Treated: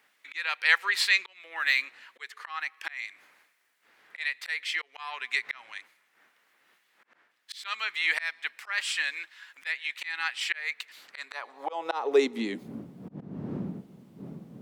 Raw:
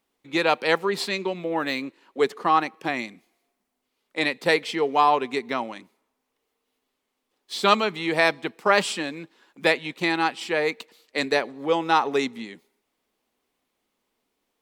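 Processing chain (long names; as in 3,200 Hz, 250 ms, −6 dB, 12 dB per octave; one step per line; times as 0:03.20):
wind on the microphone 230 Hz −41 dBFS
volume swells 558 ms
in parallel at +0.5 dB: downward compressor, threshold −40 dBFS, peak gain reduction 20.5 dB
on the sum: high-pass filter sweep 1,800 Hz → 180 Hz, 0:10.99–0:12.79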